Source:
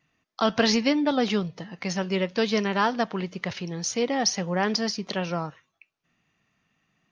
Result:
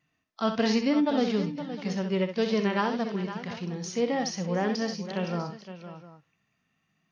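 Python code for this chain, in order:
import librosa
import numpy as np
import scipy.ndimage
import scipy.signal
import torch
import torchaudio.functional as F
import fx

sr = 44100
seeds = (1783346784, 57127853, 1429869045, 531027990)

p1 = fx.hpss(x, sr, part='percussive', gain_db=-10)
p2 = p1 + fx.echo_multitap(p1, sr, ms=(64, 516, 708), db=(-8.5, -11.5, -17.5), dry=0)
y = p2 * 10.0 ** (-1.5 / 20.0)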